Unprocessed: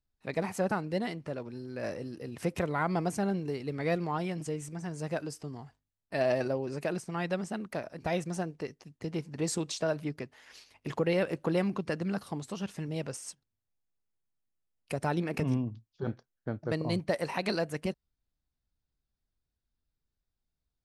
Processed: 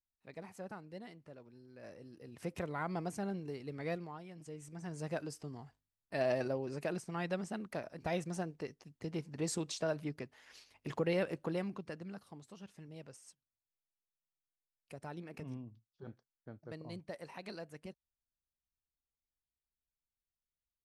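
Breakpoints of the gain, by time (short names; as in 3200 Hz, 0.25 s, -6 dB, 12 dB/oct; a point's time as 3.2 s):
1.82 s -16.5 dB
2.54 s -8.5 dB
3.91 s -8.5 dB
4.24 s -18 dB
4.93 s -5 dB
11.2 s -5 dB
12.25 s -15.5 dB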